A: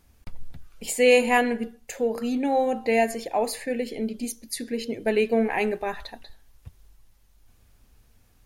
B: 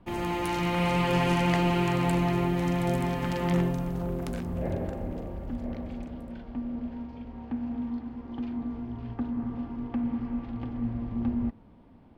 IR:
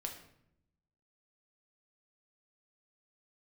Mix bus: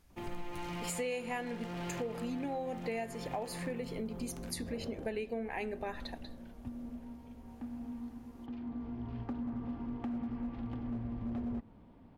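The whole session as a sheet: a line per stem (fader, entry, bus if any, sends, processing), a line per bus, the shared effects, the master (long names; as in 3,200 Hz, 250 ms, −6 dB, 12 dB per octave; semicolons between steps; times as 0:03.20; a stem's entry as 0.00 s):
−5.0 dB, 0.00 s, no send, high-shelf EQ 10,000 Hz −4 dB
−3.0 dB, 0.10 s, no send, hard clipping −26.5 dBFS, distortion −10 dB; automatic ducking −7 dB, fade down 0.25 s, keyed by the first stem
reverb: not used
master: downward compressor 6 to 1, threshold −35 dBFS, peak gain reduction 16 dB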